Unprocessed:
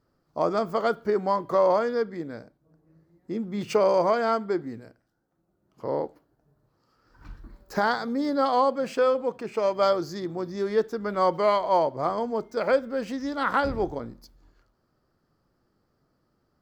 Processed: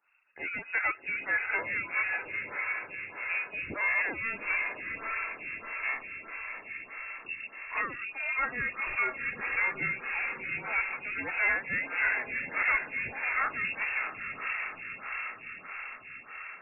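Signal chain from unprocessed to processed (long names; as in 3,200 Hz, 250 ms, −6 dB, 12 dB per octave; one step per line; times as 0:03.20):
soft clipping −22.5 dBFS, distortion −10 dB
parametric band 310 Hz −11 dB 1.4 octaves
in parallel at −2 dB: brickwall limiter −31.5 dBFS, peak gain reduction 11.5 dB
on the sum: reverb reduction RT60 0.62 s
feedback delay with all-pass diffusion 775 ms, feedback 63%, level −4.5 dB
on a send at −23 dB: convolution reverb RT60 3.0 s, pre-delay 5 ms
on the sum: voice inversion scrambler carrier 2,700 Hz
phaser with staggered stages 1.6 Hz
level +1.5 dB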